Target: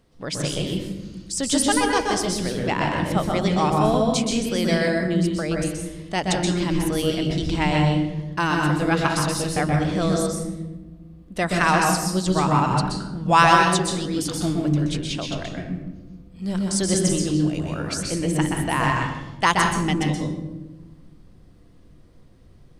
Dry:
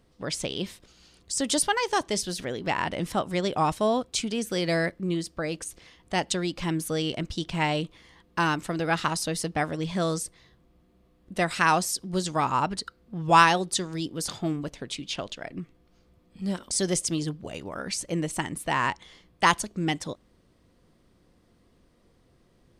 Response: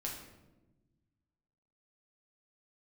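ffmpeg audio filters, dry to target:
-filter_complex "[0:a]asplit=2[a][b];[1:a]atrim=start_sample=2205,lowshelf=f=210:g=10.5,adelay=125[c];[b][c]afir=irnorm=-1:irlink=0,volume=-1dB[d];[a][d]amix=inputs=2:normalize=0,volume=1.5dB"

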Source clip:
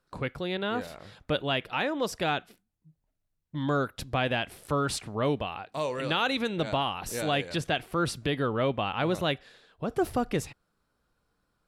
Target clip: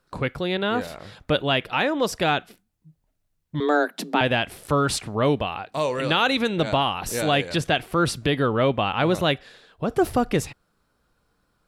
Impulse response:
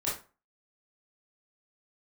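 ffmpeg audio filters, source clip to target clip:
-filter_complex "[0:a]asettb=1/sr,asplit=3[a][b][c];[a]atrim=end=3.604[d];[b]atrim=start=3.6:end=4.21,asetpts=PTS-STARTPTS,afade=t=in:d=0.004:c=qsin,afade=t=out:st=0.606:d=0.004:c=qsin,afreqshift=150[e];[c]atrim=start=4.206[f];[d][e]acrossfade=d=0.004:c1=hsin:c2=qsin[g];[g][f]acrossfade=d=0.004:c1=qsin:c2=hsin,volume=6.5dB"

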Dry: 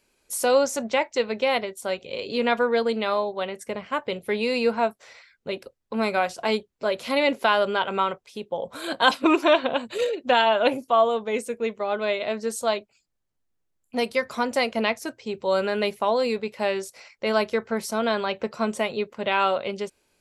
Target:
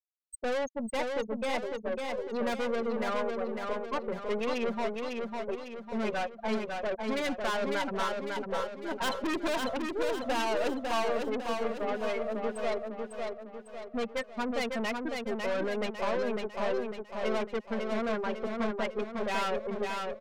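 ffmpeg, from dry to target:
-af "afftfilt=real='re*gte(hypot(re,im),0.141)':imag='im*gte(hypot(re,im),0.141)':win_size=1024:overlap=0.75,adynamicequalizer=threshold=0.0178:dfrequency=560:dqfactor=1.4:tfrequency=560:tqfactor=1.4:attack=5:release=100:ratio=0.375:range=2.5:mode=cutabove:tftype=bell,aeval=exprs='(tanh(28.2*val(0)+0.35)-tanh(0.35))/28.2':c=same,aecho=1:1:551|1102|1653|2204|2755|3306:0.631|0.297|0.139|0.0655|0.0308|0.0145"

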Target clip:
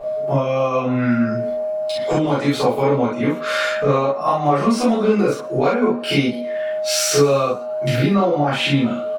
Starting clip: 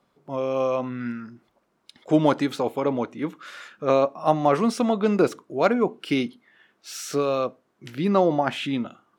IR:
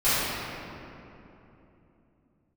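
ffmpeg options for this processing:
-filter_complex "[0:a]aeval=exprs='val(0)+0.01*sin(2*PI*620*n/s)':c=same,asplit=2[a][b];[b]alimiter=limit=-13.5dB:level=0:latency=1,volume=1dB[c];[a][c]amix=inputs=2:normalize=0,acompressor=threshold=-29dB:ratio=6,bandreject=f=79.94:t=h:w=4,bandreject=f=159.88:t=h:w=4,bandreject=f=239.82:t=h:w=4,bandreject=f=319.76:t=h:w=4,bandreject=f=399.7:t=h:w=4,bandreject=f=479.64:t=h:w=4,bandreject=f=559.58:t=h:w=4,bandreject=f=639.52:t=h:w=4,bandreject=f=719.46:t=h:w=4,bandreject=f=799.4:t=h:w=4,bandreject=f=879.34:t=h:w=4,bandreject=f=959.28:t=h:w=4,bandreject=f=1.03922k:t=h:w=4,bandreject=f=1.11916k:t=h:w=4,bandreject=f=1.1991k:t=h:w=4,bandreject=f=1.27904k:t=h:w=4,bandreject=f=1.35898k:t=h:w=4,bandreject=f=1.43892k:t=h:w=4,bandreject=f=1.51886k:t=h:w=4,bandreject=f=1.5988k:t=h:w=4,bandreject=f=1.67874k:t=h:w=4,bandreject=f=1.75868k:t=h:w=4,bandreject=f=1.83862k:t=h:w=4,bandreject=f=1.91856k:t=h:w=4,bandreject=f=1.9985k:t=h:w=4,bandreject=f=2.07844k:t=h:w=4,bandreject=f=2.15838k:t=h:w=4,bandreject=f=2.23832k:t=h:w=4,bandreject=f=2.31826k:t=h:w=4,bandreject=f=2.3982k:t=h:w=4,bandreject=f=2.47814k:t=h:w=4,asplit=5[d][e][f][g][h];[e]adelay=115,afreqshift=100,volume=-22dB[i];[f]adelay=230,afreqshift=200,volume=-27.4dB[j];[g]adelay=345,afreqshift=300,volume=-32.7dB[k];[h]adelay=460,afreqshift=400,volume=-38.1dB[l];[d][i][j][k][l]amix=inputs=5:normalize=0[m];[1:a]atrim=start_sample=2205,atrim=end_sample=3528[n];[m][n]afir=irnorm=-1:irlink=0,volume=1.5dB"

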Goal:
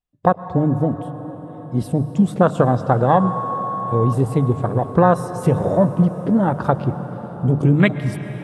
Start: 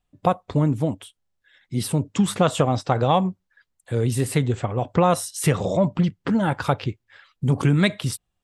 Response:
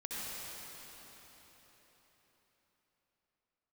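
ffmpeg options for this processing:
-filter_complex "[0:a]afwtdn=0.0501,asettb=1/sr,asplit=3[a][b][c];[a]atrim=end=3.204[d];[b]atrim=start=3.2:end=4.13,asetpts=PTS-STARTPTS,afade=t=in:d=0.004:c=qsin,afade=t=out:st=0.926:d=0.004:c=qsin,aeval=exprs='val(0)+0.0398*sin(2*PI*1100*n/s)':c=same[e];[c]atrim=start=4.126[f];[d][e]acrossfade=d=0.004:c1=hsin:c2=qsin[g];[g][f]acrossfade=d=0.004:c1=qsin:c2=hsin,bandreject=f=50:t=h:w=6,bandreject=f=100:t=h:w=6,bandreject=f=150:t=h:w=6,asplit=2[h][i];[1:a]atrim=start_sample=2205,asetrate=26019,aresample=44100[j];[i][j]afir=irnorm=-1:irlink=0,volume=-16dB[k];[h][k]amix=inputs=2:normalize=0,volume=3.5dB"

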